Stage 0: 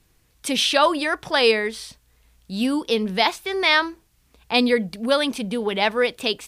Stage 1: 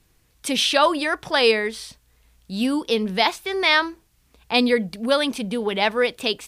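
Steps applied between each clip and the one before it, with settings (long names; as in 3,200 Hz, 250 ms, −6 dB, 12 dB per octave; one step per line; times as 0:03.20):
no processing that can be heard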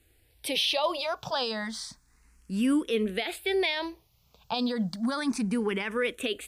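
brickwall limiter −16.5 dBFS, peak gain reduction 11.5 dB
frequency shifter mixed with the dry sound +0.31 Hz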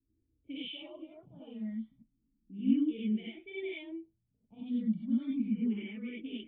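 formant resonators in series i
low-pass that shuts in the quiet parts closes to 450 Hz, open at −32 dBFS
reverb whose tail is shaped and stops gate 120 ms rising, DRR −8 dB
level −8 dB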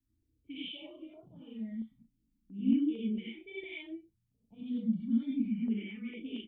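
double-tracking delay 35 ms −7.5 dB
notch on a step sequencer 4.4 Hz 460–1,800 Hz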